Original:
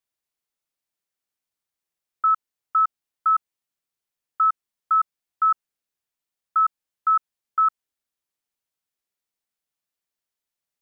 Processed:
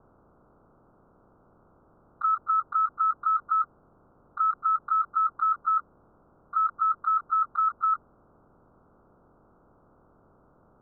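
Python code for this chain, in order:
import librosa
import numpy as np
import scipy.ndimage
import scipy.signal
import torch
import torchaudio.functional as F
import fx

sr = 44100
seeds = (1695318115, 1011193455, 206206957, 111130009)

y = fx.spec_quant(x, sr, step_db=30)
y = scipy.signal.sosfilt(scipy.signal.butter(16, 1400.0, 'lowpass', fs=sr, output='sos'), y)
y = fx.peak_eq(y, sr, hz=1100.0, db=-8.0, octaves=2.0)
y = y + 10.0 ** (-17.5 / 20.0) * np.pad(y, (int(252 * sr / 1000.0), 0))[:len(y)]
y = fx.env_flatten(y, sr, amount_pct=100)
y = y * librosa.db_to_amplitude(3.0)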